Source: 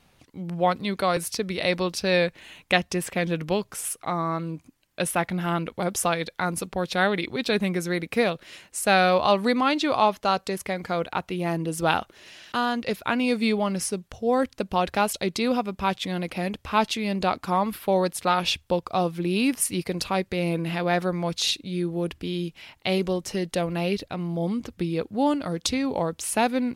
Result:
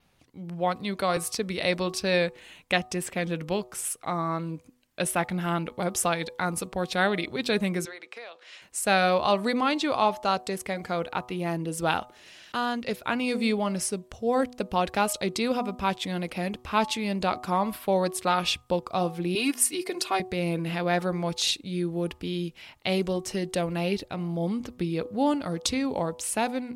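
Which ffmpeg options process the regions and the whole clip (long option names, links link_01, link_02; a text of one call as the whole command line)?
ffmpeg -i in.wav -filter_complex "[0:a]asettb=1/sr,asplit=3[link_01][link_02][link_03];[link_01]atrim=end=7.854[link_04];[link_02]atrim=start=7.85:end=8.62,asetpts=PTS-STARTPTS,afade=type=in:duration=0.004:curve=qsin,afade=type=out:start_time=0.766:duration=0.004:curve=qsin,highpass=frequency=240:width=0.5412,highpass=frequency=240:width=1.3066,acrossover=split=500 7500:gain=0.0794 1 0.0794[link_05][link_06][link_07];[link_05][link_06][link_07]amix=inputs=3:normalize=0,acompressor=threshold=-36dB:ratio=8:attack=3.2:release=140:knee=1:detection=peak[link_08];[link_03]atrim=start=8.616[link_09];[link_04][link_08]acrossfade=duration=0.004:curve1=hsin:curve2=qsin[link_10];[link_10][link_09]acrossfade=duration=0.004:curve1=qsin:curve2=hsin,asettb=1/sr,asplit=3[link_11][link_12][link_13];[link_11]atrim=end=19.354[link_14];[link_12]atrim=start=19.35:end=20.2,asetpts=PTS-STARTPTS,afade=type=in:duration=0.004:curve=qsin,afade=type=out:start_time=0.846:duration=0.004:curve=qsin,highpass=310,aecho=1:1:2.8:0.88,atrim=end_sample=37485[link_15];[link_13]atrim=start=20.196[link_16];[link_14][link_15]acrossfade=duration=0.004:curve1=hsin:curve2=qsin[link_17];[link_17][link_16]acrossfade=duration=0.004:curve1=qsin:curve2=hsin,bandreject=frequency=123.7:width_type=h:width=4,bandreject=frequency=247.4:width_type=h:width=4,bandreject=frequency=371.1:width_type=h:width=4,bandreject=frequency=494.8:width_type=h:width=4,bandreject=frequency=618.5:width_type=h:width=4,bandreject=frequency=742.2:width_type=h:width=4,bandreject=frequency=865.9:width_type=h:width=4,bandreject=frequency=989.6:width_type=h:width=4,bandreject=frequency=1113.3:width_type=h:width=4,bandreject=frequency=1237:width_type=h:width=4,adynamicequalizer=threshold=0.00282:dfrequency=8100:dqfactor=3.4:tfrequency=8100:tqfactor=3.4:attack=5:release=100:ratio=0.375:range=2.5:mode=boostabove:tftype=bell,dynaudnorm=framelen=340:gausssize=5:maxgain=4dB,volume=-5.5dB" out.wav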